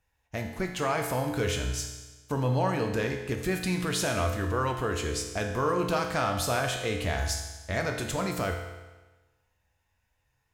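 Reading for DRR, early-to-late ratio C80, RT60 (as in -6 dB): 2.0 dB, 7.5 dB, 1.2 s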